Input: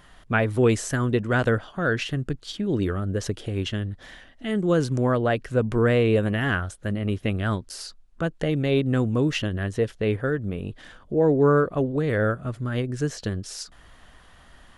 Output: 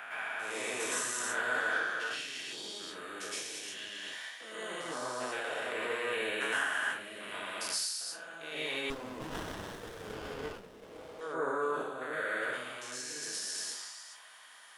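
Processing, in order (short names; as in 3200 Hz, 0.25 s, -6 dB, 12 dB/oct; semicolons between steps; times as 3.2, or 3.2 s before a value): stepped spectrum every 0.4 s; high shelf 6700 Hz +11.5 dB; transient shaper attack -7 dB, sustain +7 dB; HPF 1000 Hz 12 dB/oct; reverb RT60 0.40 s, pre-delay 0.106 s, DRR -7 dB; 8.9–11.21 running maximum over 17 samples; gain -6 dB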